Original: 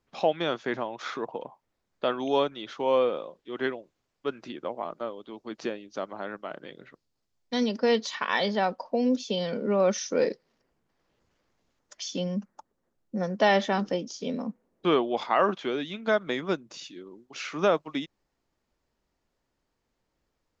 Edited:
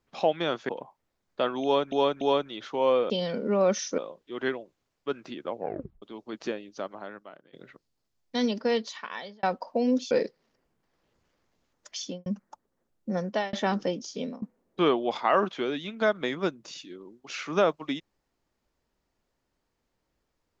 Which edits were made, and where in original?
0:00.69–0:01.33: remove
0:02.27–0:02.56: repeat, 3 plays
0:04.71: tape stop 0.49 s
0:05.86–0:06.71: fade out, to −23 dB
0:07.63–0:08.61: fade out
0:09.29–0:10.17: move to 0:03.16
0:12.07–0:12.32: fade out and dull
0:13.29–0:13.59: fade out
0:14.16–0:14.48: fade out equal-power, to −19.5 dB

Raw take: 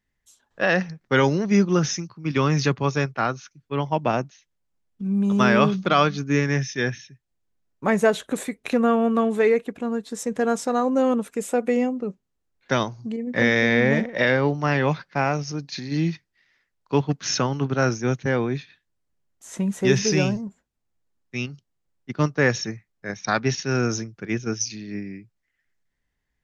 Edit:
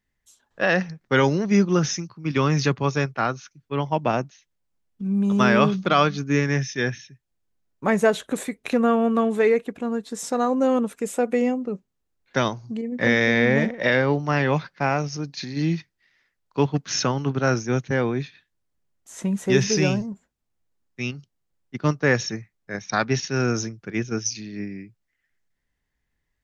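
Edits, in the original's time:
0:10.23–0:10.58: remove

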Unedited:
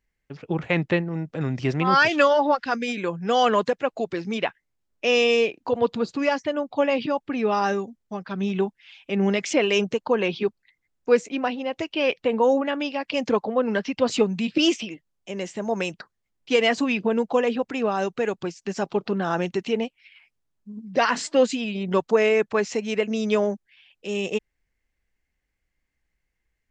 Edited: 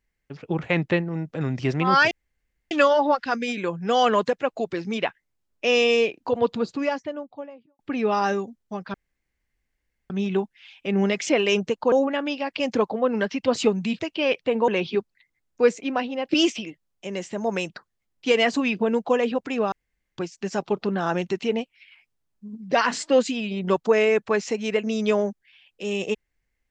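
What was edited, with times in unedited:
0:02.11: splice in room tone 0.60 s
0:05.89–0:07.19: fade out and dull
0:08.34: splice in room tone 1.16 s
0:10.16–0:11.77: swap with 0:12.46–0:14.53
0:17.96–0:18.42: fill with room tone

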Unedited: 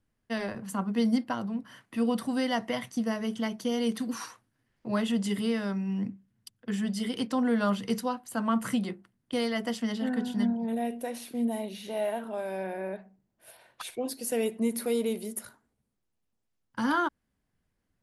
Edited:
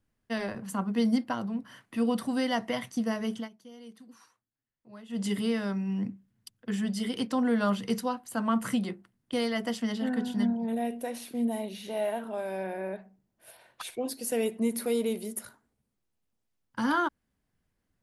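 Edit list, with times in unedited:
0:03.35–0:05.23: duck −19.5 dB, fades 0.14 s

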